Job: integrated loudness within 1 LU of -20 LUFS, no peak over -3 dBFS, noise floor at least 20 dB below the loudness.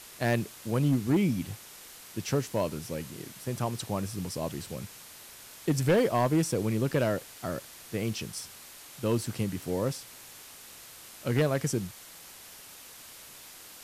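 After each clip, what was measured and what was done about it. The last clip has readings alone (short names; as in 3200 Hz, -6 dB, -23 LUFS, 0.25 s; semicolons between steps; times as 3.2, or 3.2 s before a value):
clipped 0.4%; flat tops at -18.5 dBFS; noise floor -49 dBFS; noise floor target -51 dBFS; loudness -30.5 LUFS; peak -18.5 dBFS; loudness target -20.0 LUFS
-> clip repair -18.5 dBFS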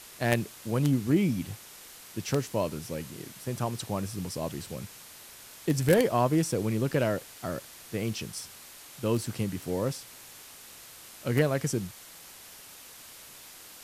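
clipped 0.0%; noise floor -49 dBFS; noise floor target -50 dBFS
-> denoiser 6 dB, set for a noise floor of -49 dBFS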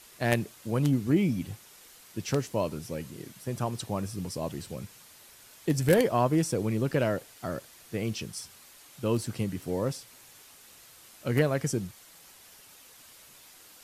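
noise floor -54 dBFS; loudness -30.0 LUFS; peak -9.5 dBFS; loudness target -20.0 LUFS
-> gain +10 dB; limiter -3 dBFS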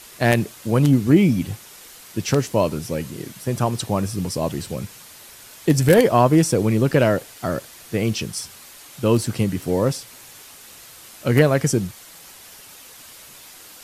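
loudness -20.5 LUFS; peak -3.0 dBFS; noise floor -44 dBFS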